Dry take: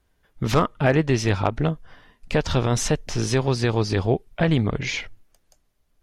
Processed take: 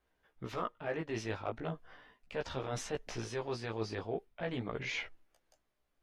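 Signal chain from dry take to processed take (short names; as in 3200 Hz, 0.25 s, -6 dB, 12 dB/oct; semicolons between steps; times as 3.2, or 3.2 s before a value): tone controls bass -10 dB, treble -8 dB; reverse; compressor 6:1, threshold -29 dBFS, peak gain reduction 13.5 dB; reverse; chorus 0.39 Hz, delay 15 ms, depth 3.1 ms; gain -2.5 dB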